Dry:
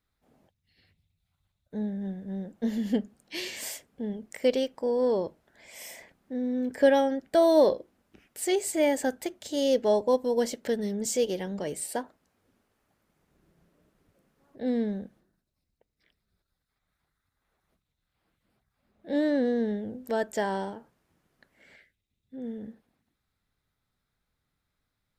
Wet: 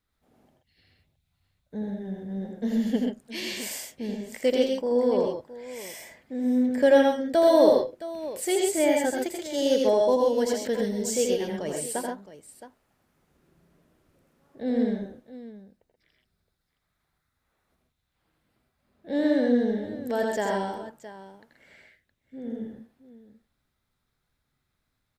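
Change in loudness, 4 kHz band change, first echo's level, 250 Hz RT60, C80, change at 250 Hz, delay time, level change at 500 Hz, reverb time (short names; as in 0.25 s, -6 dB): +3.0 dB, +3.0 dB, -4.5 dB, none, none, +3.0 dB, 83 ms, +3.0 dB, none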